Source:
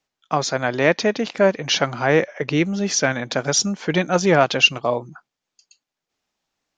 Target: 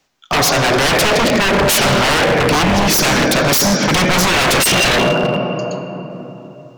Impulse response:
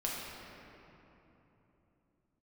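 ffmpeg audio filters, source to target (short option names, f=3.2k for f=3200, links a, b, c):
-filter_complex "[0:a]asplit=2[a][b];[1:a]atrim=start_sample=2205[c];[b][c]afir=irnorm=-1:irlink=0,volume=-7.5dB[d];[a][d]amix=inputs=2:normalize=0,apsyclip=12.5dB,aeval=exprs='0.398*(abs(mod(val(0)/0.398+3,4)-2)-1)':c=same"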